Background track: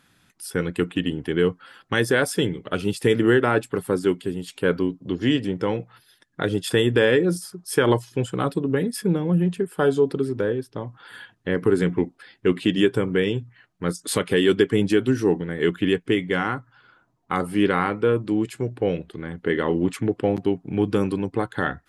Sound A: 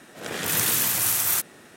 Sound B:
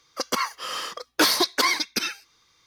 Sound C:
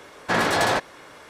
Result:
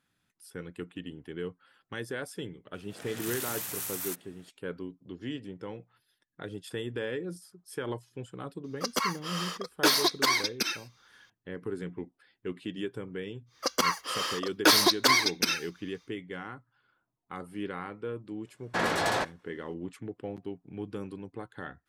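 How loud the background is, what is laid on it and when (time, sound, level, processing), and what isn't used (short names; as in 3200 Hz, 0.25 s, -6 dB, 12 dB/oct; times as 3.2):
background track -16.5 dB
2.74 add A -13.5 dB
8.64 add B -4 dB
13.46 add B -1 dB, fades 0.10 s
18.45 add C -7 dB + expander -36 dBFS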